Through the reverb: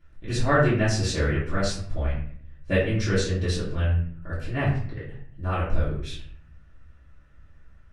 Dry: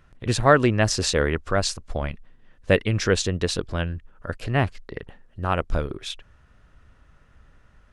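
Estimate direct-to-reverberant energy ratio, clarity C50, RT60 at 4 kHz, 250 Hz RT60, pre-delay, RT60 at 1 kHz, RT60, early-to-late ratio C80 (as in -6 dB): -12.0 dB, 3.5 dB, 0.40 s, 0.85 s, 3 ms, 0.50 s, 0.55 s, 7.0 dB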